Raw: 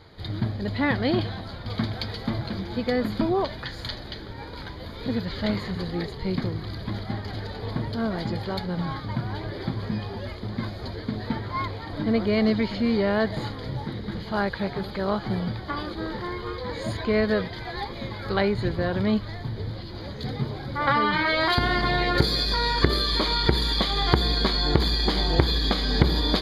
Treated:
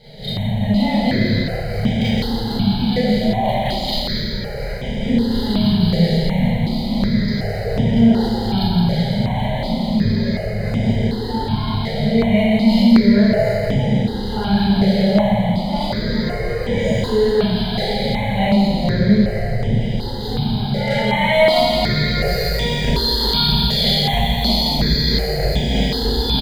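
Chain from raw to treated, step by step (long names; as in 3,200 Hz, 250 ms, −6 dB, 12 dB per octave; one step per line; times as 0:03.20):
running median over 5 samples
high-shelf EQ 7,100 Hz −11 dB
notch filter 1,800 Hz, Q 15
comb filter 1 ms, depth 36%
in parallel at +1 dB: compressor whose output falls as the input rises −29 dBFS, ratio −1
on the sum: hard clipping −9 dBFS, distortion −25 dB
phaser with its sweep stopped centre 310 Hz, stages 6
repeating echo 166 ms, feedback 58%, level −6 dB
four-comb reverb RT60 0.99 s, combs from 27 ms, DRR −9.5 dB
step-sequenced phaser 2.7 Hz 290–4,300 Hz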